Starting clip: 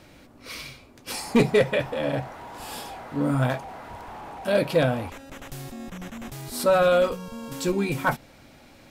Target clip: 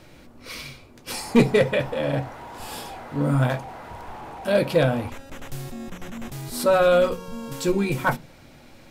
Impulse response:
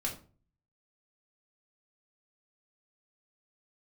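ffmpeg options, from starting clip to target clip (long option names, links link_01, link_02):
-filter_complex "[0:a]asplit=2[link_01][link_02];[1:a]atrim=start_sample=2205,asetrate=79380,aresample=44100,lowshelf=frequency=390:gain=11[link_03];[link_02][link_03]afir=irnorm=-1:irlink=0,volume=-13dB[link_04];[link_01][link_04]amix=inputs=2:normalize=0"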